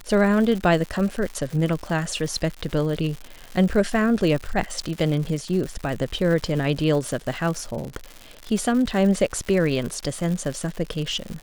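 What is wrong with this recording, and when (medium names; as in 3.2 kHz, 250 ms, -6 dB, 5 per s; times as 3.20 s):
crackle 190 per s -29 dBFS
2.69 s: dropout 4.2 ms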